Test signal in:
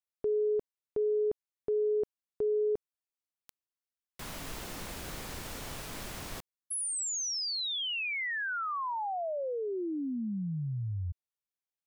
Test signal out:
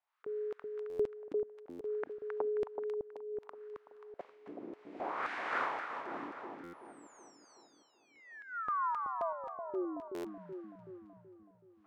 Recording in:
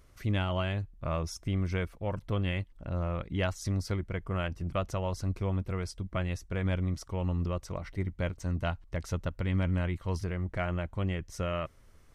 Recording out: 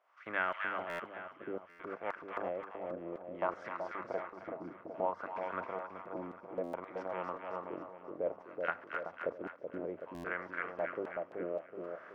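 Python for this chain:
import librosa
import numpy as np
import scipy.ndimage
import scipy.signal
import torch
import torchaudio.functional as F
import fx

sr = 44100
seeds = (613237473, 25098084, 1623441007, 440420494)

y = fx.bin_compress(x, sr, power=0.6)
y = fx.dynamic_eq(y, sr, hz=2200.0, q=3.0, threshold_db=-50.0, ratio=4.0, max_db=5)
y = scipy.signal.sosfilt(scipy.signal.butter(4, 96.0, 'highpass', fs=sr, output='sos'), y)
y = fx.filter_lfo_lowpass(y, sr, shape='sine', hz=0.6, low_hz=290.0, high_hz=1600.0, q=3.5)
y = fx.low_shelf(y, sr, hz=470.0, db=-4.0)
y = fx.hum_notches(y, sr, base_hz=50, count=5)
y = fx.filter_lfo_highpass(y, sr, shape='square', hz=1.9, low_hz=360.0, high_hz=2400.0, q=0.7)
y = fx.echo_split(y, sr, split_hz=930.0, low_ms=377, high_ms=267, feedback_pct=52, wet_db=-4)
y = fx.buffer_glitch(y, sr, at_s=(0.89, 1.69, 6.63, 10.14), block=512, repeats=8)
y = fx.am_noise(y, sr, seeds[0], hz=5.7, depth_pct=50)
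y = y * 10.0 ** (-3.0 / 20.0)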